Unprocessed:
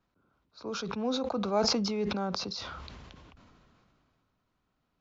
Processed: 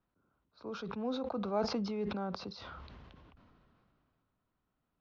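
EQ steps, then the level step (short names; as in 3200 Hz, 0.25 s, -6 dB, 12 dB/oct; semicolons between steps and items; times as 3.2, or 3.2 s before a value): air absorption 210 m; bell 2300 Hz -2.5 dB 0.21 oct; -4.5 dB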